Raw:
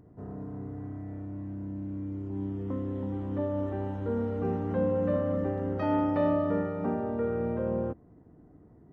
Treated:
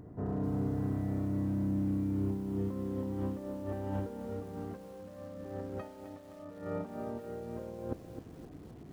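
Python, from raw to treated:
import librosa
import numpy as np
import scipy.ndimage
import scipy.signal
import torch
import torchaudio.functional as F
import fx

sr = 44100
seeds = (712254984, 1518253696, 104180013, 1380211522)

y = fx.over_compress(x, sr, threshold_db=-36.0, ratio=-0.5)
y = fx.echo_crushed(y, sr, ms=260, feedback_pct=55, bits=9, wet_db=-10.0)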